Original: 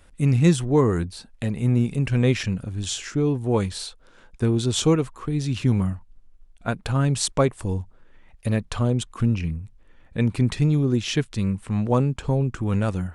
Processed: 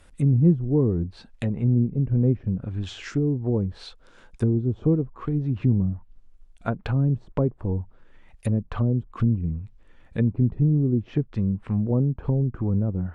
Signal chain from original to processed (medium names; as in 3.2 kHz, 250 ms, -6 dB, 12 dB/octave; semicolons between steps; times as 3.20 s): low-pass that closes with the level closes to 370 Hz, closed at -19 dBFS